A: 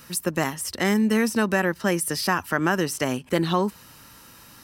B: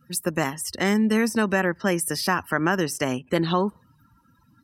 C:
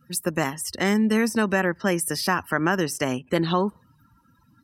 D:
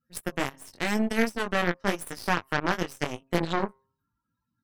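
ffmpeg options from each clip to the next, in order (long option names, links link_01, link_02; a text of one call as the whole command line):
ffmpeg -i in.wav -af "afftdn=noise_reduction=29:noise_floor=-43" out.wav
ffmpeg -i in.wav -af anull out.wav
ffmpeg -i in.wav -af "flanger=delay=17:depth=5.8:speed=0.9,bandreject=frequency=133.6:width_type=h:width=4,bandreject=frequency=267.2:width_type=h:width=4,bandreject=frequency=400.8:width_type=h:width=4,bandreject=frequency=534.4:width_type=h:width=4,bandreject=frequency=668:width_type=h:width=4,bandreject=frequency=801.6:width_type=h:width=4,bandreject=frequency=935.2:width_type=h:width=4,bandreject=frequency=1068.8:width_type=h:width=4,bandreject=frequency=1202.4:width_type=h:width=4,aeval=exprs='0.335*(cos(1*acos(clip(val(0)/0.335,-1,1)))-cos(1*PI/2))+0.0237*(cos(6*acos(clip(val(0)/0.335,-1,1)))-cos(6*PI/2))+0.0422*(cos(7*acos(clip(val(0)/0.335,-1,1)))-cos(7*PI/2))':channel_layout=same" out.wav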